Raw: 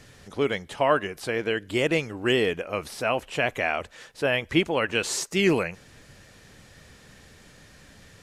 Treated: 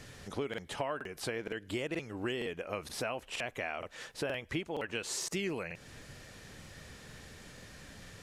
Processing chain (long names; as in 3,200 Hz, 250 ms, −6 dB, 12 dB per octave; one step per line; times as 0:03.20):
downward compressor 6 to 1, threshold −34 dBFS, peak gain reduction 17 dB
regular buffer underruns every 0.47 s, samples 2,048, repeat, from 0:00.49